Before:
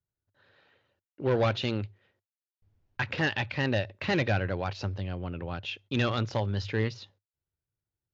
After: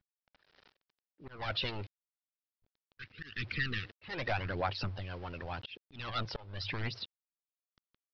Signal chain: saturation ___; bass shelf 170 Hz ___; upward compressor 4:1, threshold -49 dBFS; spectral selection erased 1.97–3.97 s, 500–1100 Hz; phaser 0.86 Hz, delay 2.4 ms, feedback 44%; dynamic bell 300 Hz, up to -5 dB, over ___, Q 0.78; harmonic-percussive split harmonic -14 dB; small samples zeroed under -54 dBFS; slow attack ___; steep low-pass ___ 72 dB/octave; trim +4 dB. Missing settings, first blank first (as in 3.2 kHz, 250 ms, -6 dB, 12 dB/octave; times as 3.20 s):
-29 dBFS, +3.5 dB, -44 dBFS, 285 ms, 5.3 kHz